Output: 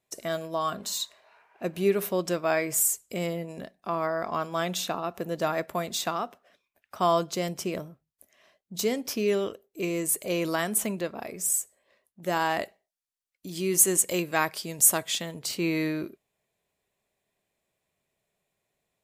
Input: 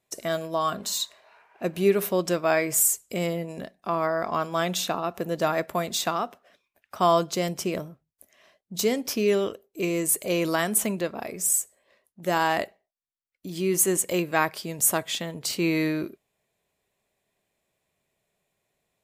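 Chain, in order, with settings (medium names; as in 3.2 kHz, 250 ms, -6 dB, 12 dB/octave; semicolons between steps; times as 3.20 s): 12.63–15.41 s: peaking EQ 8.6 kHz +6 dB 2.4 oct; trim -3 dB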